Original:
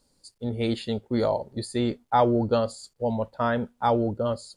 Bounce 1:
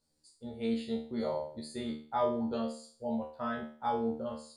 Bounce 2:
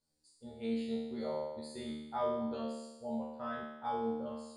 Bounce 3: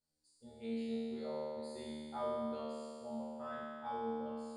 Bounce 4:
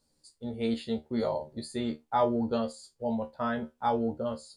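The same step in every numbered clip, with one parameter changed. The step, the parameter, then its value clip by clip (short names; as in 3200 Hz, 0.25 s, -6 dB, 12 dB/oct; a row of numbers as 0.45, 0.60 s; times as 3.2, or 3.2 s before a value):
resonator, decay: 0.44, 0.99, 2.2, 0.17 s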